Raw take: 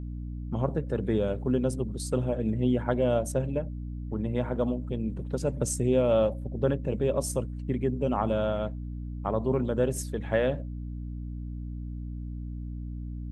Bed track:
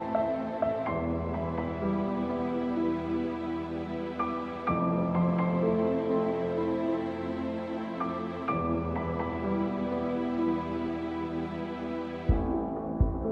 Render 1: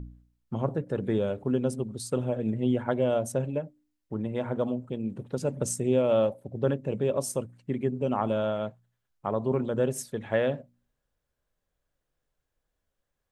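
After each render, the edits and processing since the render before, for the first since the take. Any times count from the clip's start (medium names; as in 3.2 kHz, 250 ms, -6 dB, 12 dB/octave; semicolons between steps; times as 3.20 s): de-hum 60 Hz, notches 5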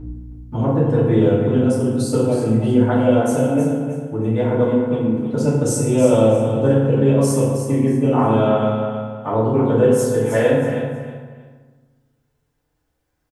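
on a send: feedback delay 317 ms, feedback 26%, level -8.5 dB; on the sum: FDN reverb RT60 1.3 s, low-frequency decay 1.4×, high-frequency decay 0.55×, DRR -9.5 dB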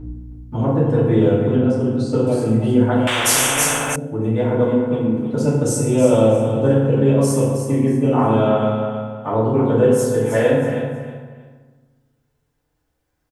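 1.56–2.27 s: distance through air 120 m; 3.07–3.96 s: spectrum-flattening compressor 10:1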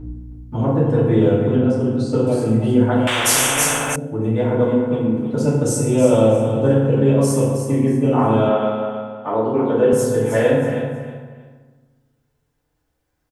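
8.49–9.93 s: band-pass 220–5800 Hz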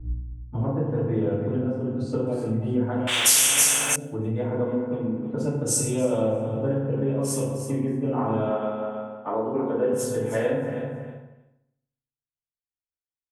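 compression 3:1, threshold -25 dBFS, peak gain reduction 12.5 dB; three bands expanded up and down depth 100%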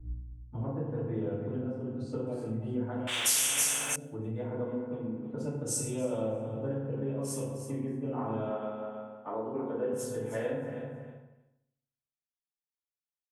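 trim -9 dB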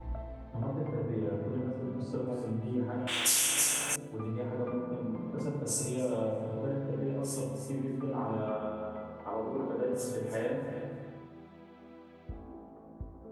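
add bed track -18 dB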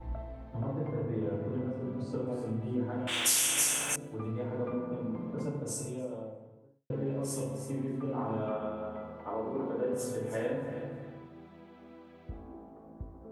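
5.22–6.90 s: studio fade out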